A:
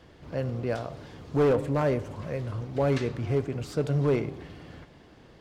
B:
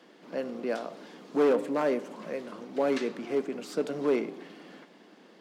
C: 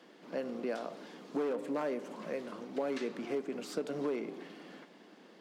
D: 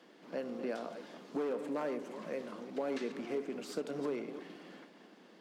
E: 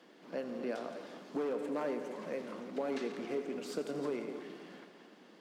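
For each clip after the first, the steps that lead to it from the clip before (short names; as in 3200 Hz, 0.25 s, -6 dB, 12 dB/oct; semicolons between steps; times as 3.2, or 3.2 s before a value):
Chebyshev high-pass 190 Hz, order 5
compressor 6:1, threshold -29 dBFS, peak gain reduction 9.5 dB; gain -2 dB
reverse delay 0.169 s, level -10.5 dB; gain -2 dB
multi-head echo 85 ms, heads first and second, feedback 62%, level -15 dB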